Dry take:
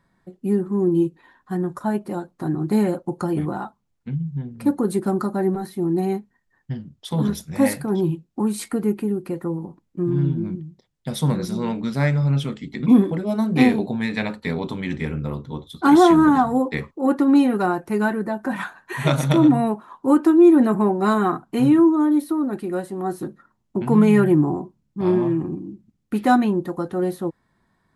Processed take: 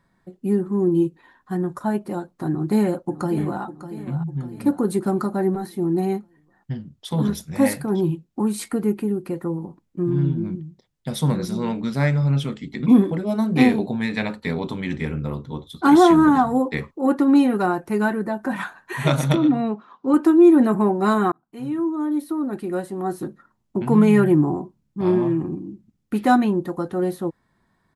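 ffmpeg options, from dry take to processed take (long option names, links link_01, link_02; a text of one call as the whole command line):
ffmpeg -i in.wav -filter_complex "[0:a]asplit=2[link_01][link_02];[link_02]afade=type=in:start_time=2.49:duration=0.01,afade=type=out:start_time=3.63:duration=0.01,aecho=0:1:600|1200|1800|2400|3000:0.237137|0.118569|0.0592843|0.0296422|0.0148211[link_03];[link_01][link_03]amix=inputs=2:normalize=0,asettb=1/sr,asplit=3[link_04][link_05][link_06];[link_04]atrim=end=19.354[link_07];[link_05]atrim=start=19.35:end=20.14,asetpts=PTS-STARTPTS,afade=type=in:duration=0.004:curve=qsin,afade=type=out:start_time=0.786:duration=0.004:curve=qsin,highpass=110,equalizer=frequency=130:width_type=q:width=4:gain=-9,equalizer=frequency=340:width_type=q:width=4:gain=-5,equalizer=frequency=620:width_type=q:width=4:gain=-6,equalizer=frequency=930:width_type=q:width=4:gain=-9,equalizer=frequency=1700:width_type=q:width=4:gain=-4,lowpass=frequency=5300:width=0.5412,lowpass=frequency=5300:width=1.3066[link_08];[link_06]atrim=start=20.136[link_09];[link_07][link_08]acrossfade=duration=0.004:curve1=hsin:curve2=qsin[link_10];[link_10][link_09]acrossfade=duration=0.004:curve1=qsin:curve2=hsin,asplit=2[link_11][link_12];[link_11]atrim=end=21.32,asetpts=PTS-STARTPTS,afade=type=out:start_time=21.316:duration=0.004:curve=hsin[link_13];[link_12]atrim=start=21.32,asetpts=PTS-STARTPTS,afade=type=in:duration=1.42[link_14];[link_13][link_14]concat=n=2:v=0:a=1" out.wav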